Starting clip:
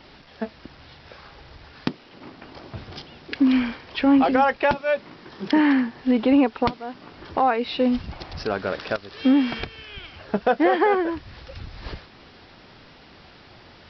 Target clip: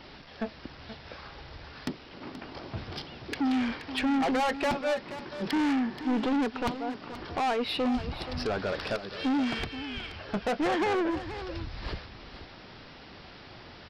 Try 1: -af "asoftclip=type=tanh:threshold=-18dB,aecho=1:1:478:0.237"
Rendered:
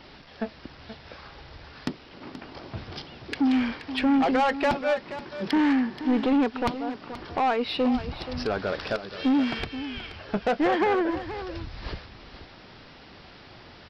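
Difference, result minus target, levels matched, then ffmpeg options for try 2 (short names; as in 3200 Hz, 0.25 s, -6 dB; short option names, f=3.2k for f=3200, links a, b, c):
soft clip: distortion -5 dB
-af "asoftclip=type=tanh:threshold=-24.5dB,aecho=1:1:478:0.237"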